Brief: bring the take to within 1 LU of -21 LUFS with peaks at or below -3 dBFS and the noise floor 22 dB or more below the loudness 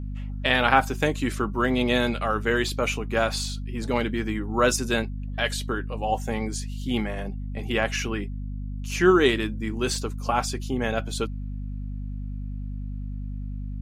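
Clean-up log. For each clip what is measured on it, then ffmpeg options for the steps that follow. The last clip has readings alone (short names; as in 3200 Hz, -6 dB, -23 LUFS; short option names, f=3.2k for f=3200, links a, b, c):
hum 50 Hz; harmonics up to 250 Hz; hum level -29 dBFS; loudness -26.0 LUFS; peak -3.0 dBFS; loudness target -21.0 LUFS
-> -af "bandreject=f=50:t=h:w=6,bandreject=f=100:t=h:w=6,bandreject=f=150:t=h:w=6,bandreject=f=200:t=h:w=6,bandreject=f=250:t=h:w=6"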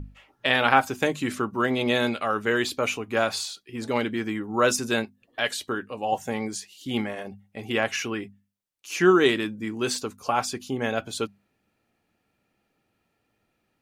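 hum none; loudness -26.0 LUFS; peak -3.0 dBFS; loudness target -21.0 LUFS
-> -af "volume=5dB,alimiter=limit=-3dB:level=0:latency=1"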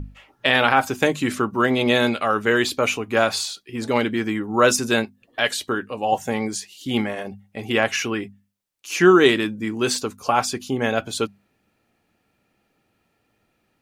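loudness -21.0 LUFS; peak -3.0 dBFS; noise floor -70 dBFS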